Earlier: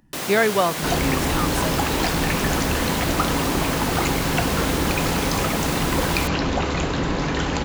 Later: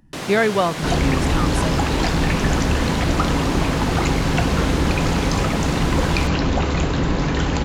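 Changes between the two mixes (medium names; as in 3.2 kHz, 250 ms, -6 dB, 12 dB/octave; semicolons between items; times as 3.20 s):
first sound: add distance through air 53 m; master: add bass shelf 200 Hz +7 dB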